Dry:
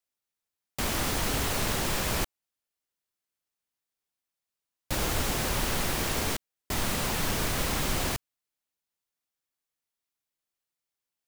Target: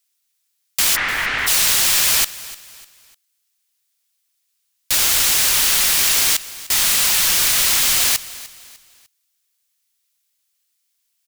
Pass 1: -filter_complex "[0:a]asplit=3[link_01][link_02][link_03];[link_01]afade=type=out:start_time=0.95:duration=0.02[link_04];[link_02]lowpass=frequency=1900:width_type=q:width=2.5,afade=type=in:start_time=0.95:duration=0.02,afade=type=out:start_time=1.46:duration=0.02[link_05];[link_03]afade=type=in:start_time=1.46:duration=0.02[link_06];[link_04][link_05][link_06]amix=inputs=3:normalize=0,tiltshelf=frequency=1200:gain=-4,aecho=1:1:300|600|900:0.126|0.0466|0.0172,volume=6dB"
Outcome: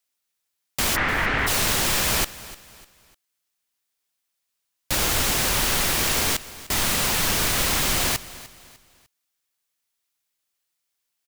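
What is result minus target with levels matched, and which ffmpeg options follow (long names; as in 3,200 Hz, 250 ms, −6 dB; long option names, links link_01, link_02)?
1,000 Hz band +8.0 dB
-filter_complex "[0:a]asplit=3[link_01][link_02][link_03];[link_01]afade=type=out:start_time=0.95:duration=0.02[link_04];[link_02]lowpass=frequency=1900:width_type=q:width=2.5,afade=type=in:start_time=0.95:duration=0.02,afade=type=out:start_time=1.46:duration=0.02[link_05];[link_03]afade=type=in:start_time=1.46:duration=0.02[link_06];[link_04][link_05][link_06]amix=inputs=3:normalize=0,tiltshelf=frequency=1200:gain=-13,aecho=1:1:300|600|900:0.126|0.0466|0.0172,volume=6dB"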